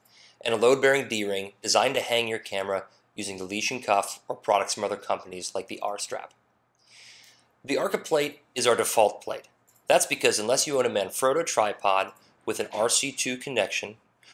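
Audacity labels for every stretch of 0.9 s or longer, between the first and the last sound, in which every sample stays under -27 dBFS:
6.240000	7.690000	silence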